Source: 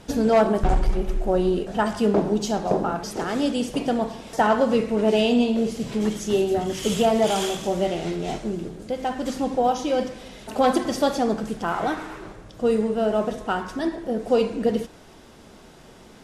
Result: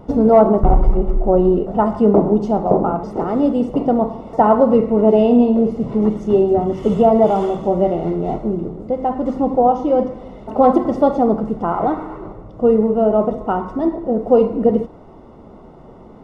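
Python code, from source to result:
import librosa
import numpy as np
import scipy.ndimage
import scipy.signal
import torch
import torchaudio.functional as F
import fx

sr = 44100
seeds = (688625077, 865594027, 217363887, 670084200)

y = scipy.signal.savgol_filter(x, 65, 4, mode='constant')
y = F.gain(torch.from_numpy(y), 7.5).numpy()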